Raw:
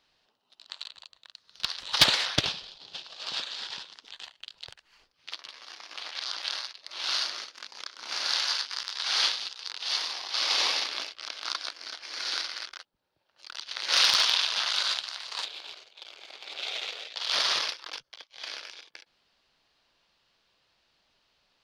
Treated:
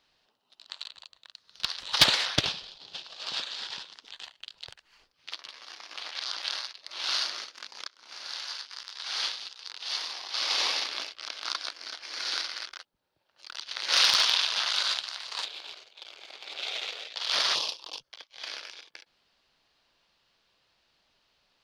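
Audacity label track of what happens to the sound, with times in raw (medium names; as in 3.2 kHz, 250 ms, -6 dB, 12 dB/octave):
7.880000	11.330000	fade in, from -13.5 dB
17.550000	18.020000	high-order bell 1.7 kHz -15 dB 1 oct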